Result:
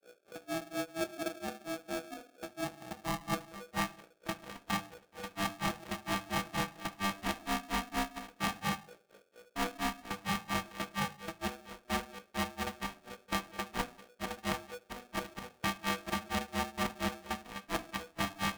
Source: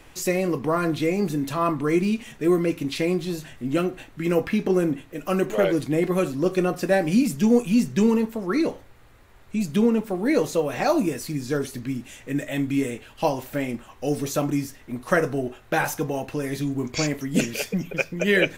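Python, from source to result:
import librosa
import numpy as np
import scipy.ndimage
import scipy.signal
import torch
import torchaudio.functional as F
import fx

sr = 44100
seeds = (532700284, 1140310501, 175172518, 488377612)

y = np.r_[np.sort(x[:len(x) // 64 * 64].reshape(-1, 64), axis=1).ravel(), x[len(x) // 64 * 64:]]
y = fx.hum_notches(y, sr, base_hz=60, count=7)
y = fx.level_steps(y, sr, step_db=15)
y = fx.filter_sweep_lowpass(y, sr, from_hz=200.0, to_hz=2700.0, start_s=2.61, end_s=3.99, q=1.5)
y = fx.add_hum(y, sr, base_hz=60, snr_db=27)
y = fx.granulator(y, sr, seeds[0], grain_ms=168.0, per_s=4.3, spray_ms=100.0, spread_st=0)
y = fx.room_shoebox(y, sr, seeds[1], volume_m3=190.0, walls='furnished', distance_m=0.51)
y = y * np.sign(np.sin(2.0 * np.pi * 490.0 * np.arange(len(y)) / sr))
y = y * librosa.db_to_amplitude(-1.5)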